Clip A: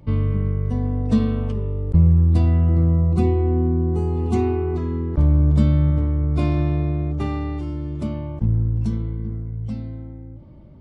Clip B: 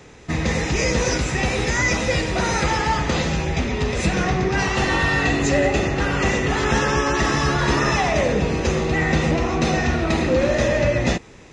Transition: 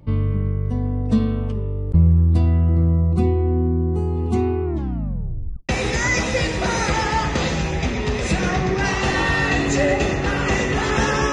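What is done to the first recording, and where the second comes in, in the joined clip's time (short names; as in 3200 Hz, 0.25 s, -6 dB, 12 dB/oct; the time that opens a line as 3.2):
clip A
4.64 tape stop 1.05 s
5.69 switch to clip B from 1.43 s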